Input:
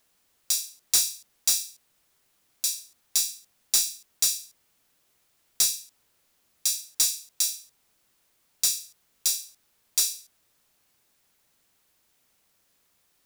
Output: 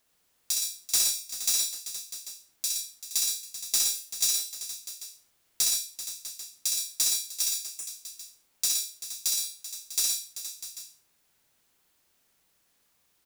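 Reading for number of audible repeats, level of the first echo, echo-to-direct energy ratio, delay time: 6, -3.0 dB, 0.0 dB, 63 ms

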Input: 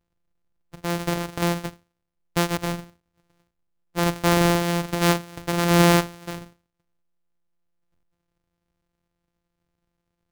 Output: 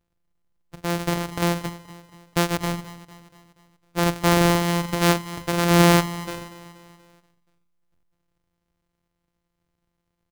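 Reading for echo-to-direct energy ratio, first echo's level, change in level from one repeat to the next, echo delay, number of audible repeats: -15.5 dB, -17.0 dB, -5.5 dB, 0.239 s, 4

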